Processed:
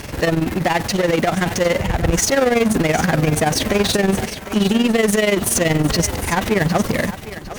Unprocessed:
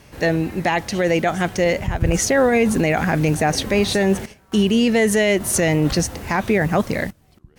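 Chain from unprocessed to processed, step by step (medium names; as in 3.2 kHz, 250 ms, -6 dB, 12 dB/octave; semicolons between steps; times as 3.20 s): AM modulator 21 Hz, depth 85%; power-law waveshaper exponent 0.5; thinning echo 756 ms, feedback 28%, high-pass 480 Hz, level -12 dB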